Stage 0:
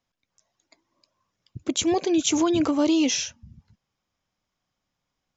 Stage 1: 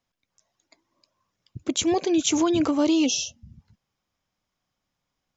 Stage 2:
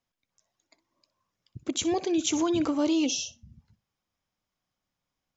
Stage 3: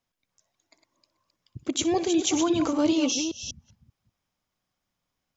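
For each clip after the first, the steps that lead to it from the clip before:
healed spectral selection 0:03.08–0:03.47, 860–2,600 Hz after
flutter between parallel walls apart 10.5 metres, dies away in 0.21 s; level −4.5 dB
delay that plays each chunk backwards 195 ms, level −7 dB; level +2 dB

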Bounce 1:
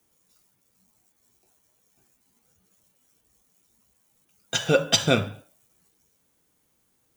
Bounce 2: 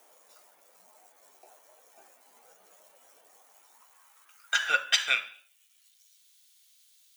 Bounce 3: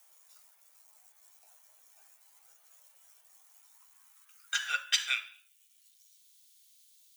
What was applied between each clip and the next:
high-pass filter sweep 630 Hz → 3,800 Hz, 0:03.26–0:06.03; multiband upward and downward compressor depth 40%
high-pass filter 1,000 Hz 12 dB per octave; high-shelf EQ 3,300 Hz +8.5 dB; level −8 dB

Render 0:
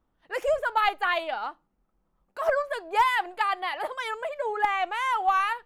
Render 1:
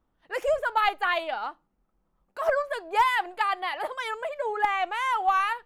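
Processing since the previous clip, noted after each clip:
no processing that can be heard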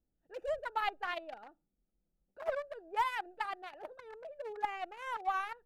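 adaptive Wiener filter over 41 samples
level −9 dB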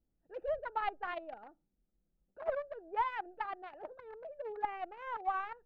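head-to-tape spacing loss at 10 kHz 35 dB
level +2.5 dB

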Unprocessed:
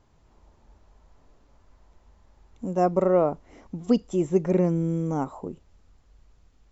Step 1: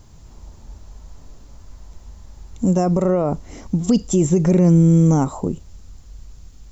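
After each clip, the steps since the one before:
brickwall limiter −20.5 dBFS, peak gain reduction 10 dB
bass and treble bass +9 dB, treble +14 dB
level +8.5 dB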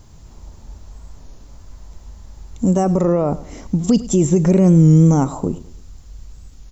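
repeating echo 103 ms, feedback 38%, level −18 dB
wow of a warped record 33 1/3 rpm, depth 100 cents
level +1.5 dB

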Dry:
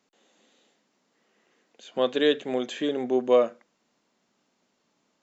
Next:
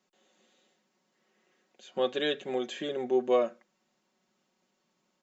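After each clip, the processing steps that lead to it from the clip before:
comb filter 5.4 ms
level −5.5 dB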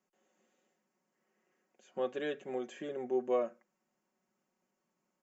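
parametric band 3,800 Hz −14 dB 0.68 octaves
level −6 dB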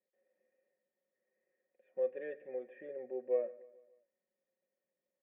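formant resonators in series e
repeating echo 145 ms, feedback 53%, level −21 dB
level +3.5 dB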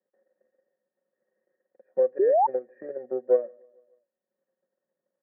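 transient designer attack +9 dB, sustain −5 dB
Chebyshev band-pass filter 120–1,700 Hz, order 4
sound drawn into the spectrogram rise, 0:02.19–0:02.47, 360–940 Hz −26 dBFS
level +6.5 dB

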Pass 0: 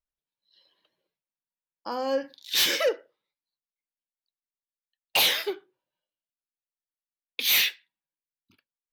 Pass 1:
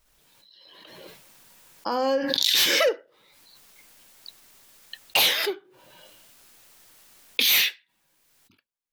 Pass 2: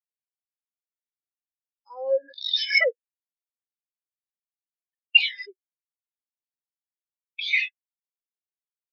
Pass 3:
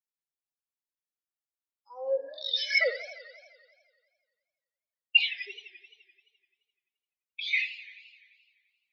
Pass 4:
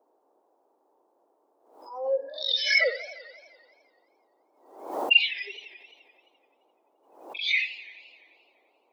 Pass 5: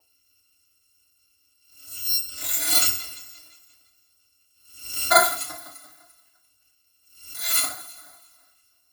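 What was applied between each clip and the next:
background raised ahead of every attack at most 21 dB per second; level +1.5 dB
Chebyshev low-pass with heavy ripple 7,000 Hz, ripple 6 dB; spectral tilt +2 dB per octave; every bin expanded away from the loudest bin 4 to 1
bucket-brigade delay 62 ms, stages 1,024, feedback 30%, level −14 dB; feedback echo with a swinging delay time 86 ms, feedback 72%, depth 199 cents, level −16 dB; level −5 dB
echo ahead of the sound 42 ms −17 dB; noise in a band 300–930 Hz −71 dBFS; background raised ahead of every attack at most 86 dB per second; level +2 dB
samples in bit-reversed order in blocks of 256 samples; feedback delay network reverb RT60 0.39 s, low-frequency decay 1.1×, high-frequency decay 0.7×, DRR −3.5 dB; level −1 dB

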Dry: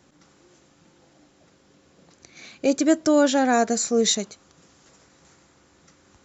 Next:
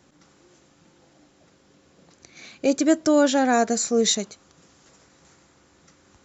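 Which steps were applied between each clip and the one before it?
no processing that can be heard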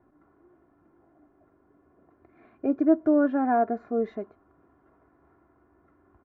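low-pass filter 1,400 Hz 24 dB per octave
comb filter 2.9 ms, depth 63%
level −5 dB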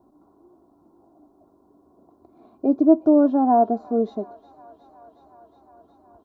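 drawn EQ curve 140 Hz 0 dB, 210 Hz +7 dB, 480 Hz +4 dB, 950 Hz +8 dB, 1,900 Hz −21 dB, 3,900 Hz +9 dB
delay with a high-pass on its return 364 ms, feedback 80%, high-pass 1,500 Hz, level −14.5 dB

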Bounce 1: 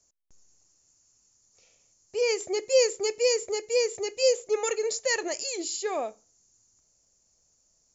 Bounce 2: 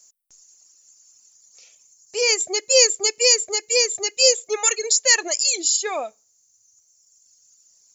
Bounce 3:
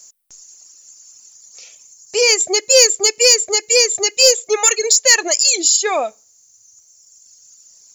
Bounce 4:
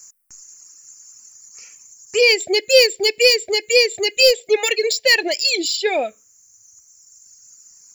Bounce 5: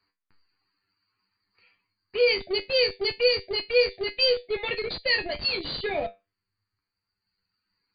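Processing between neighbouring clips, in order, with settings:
reverb reduction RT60 1.8 s; spectral tilt +3.5 dB per octave; level +6 dB
in parallel at 0 dB: downward compressor, threshold −26 dBFS, peak gain reduction 15 dB; on the sum: soft clipping −4 dBFS, distortion −22 dB; level +4 dB
phaser swept by the level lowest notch 600 Hz, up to 1,200 Hz, full sweep at −13 dBFS; level +3 dB
tuned comb filter 98 Hz, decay 0.21 s, harmonics all, mix 90%; in parallel at −9 dB: comparator with hysteresis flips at −25.5 dBFS; on the sum: linear-phase brick-wall low-pass 4,800 Hz; level −3 dB

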